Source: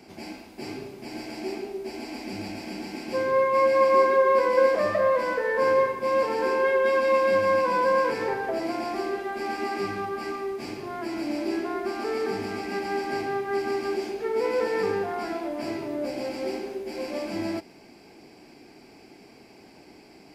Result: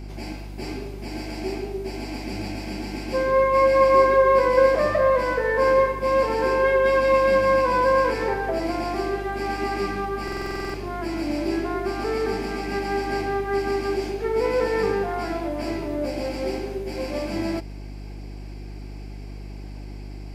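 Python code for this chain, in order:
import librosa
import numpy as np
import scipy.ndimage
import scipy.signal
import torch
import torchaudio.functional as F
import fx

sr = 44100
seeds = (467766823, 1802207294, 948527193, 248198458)

y = fx.dmg_buzz(x, sr, base_hz=50.0, harmonics=7, level_db=-39.0, tilt_db=-7, odd_only=False)
y = fx.buffer_glitch(y, sr, at_s=(10.23,), block=2048, repeats=10)
y = F.gain(torch.from_numpy(y), 3.0).numpy()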